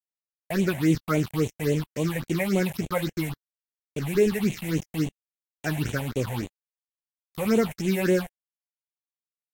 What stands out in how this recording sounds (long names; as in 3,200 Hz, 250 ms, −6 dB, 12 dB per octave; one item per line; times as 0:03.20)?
a quantiser's noise floor 6 bits, dither none
phaser sweep stages 6, 3.6 Hz, lowest notch 320–1,400 Hz
Ogg Vorbis